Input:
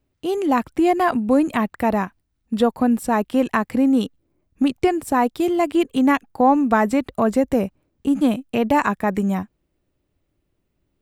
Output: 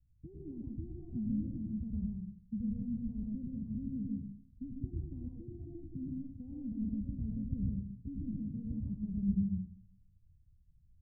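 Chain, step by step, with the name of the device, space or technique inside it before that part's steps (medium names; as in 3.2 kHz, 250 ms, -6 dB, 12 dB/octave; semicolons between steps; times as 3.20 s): club heard from the street (peak limiter -17 dBFS, peak gain reduction 11.5 dB; low-pass 140 Hz 24 dB/octave; reverberation RT60 0.55 s, pre-delay 95 ms, DRR -2.5 dB); trim +2.5 dB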